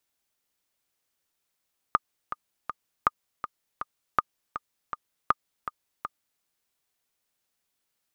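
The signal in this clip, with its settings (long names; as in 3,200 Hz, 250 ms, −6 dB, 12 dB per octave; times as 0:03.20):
click track 161 BPM, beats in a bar 3, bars 4, 1,220 Hz, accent 11.5 dB −6.5 dBFS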